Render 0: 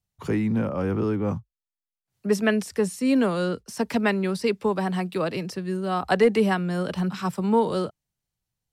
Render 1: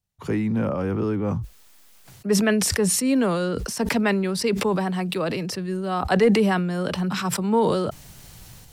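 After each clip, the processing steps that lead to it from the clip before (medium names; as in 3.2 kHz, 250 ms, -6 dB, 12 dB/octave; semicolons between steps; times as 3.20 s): decay stretcher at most 28 dB/s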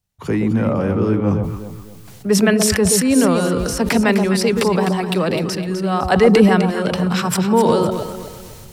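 echo whose repeats swap between lows and highs 127 ms, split 940 Hz, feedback 60%, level -4 dB; trim +5 dB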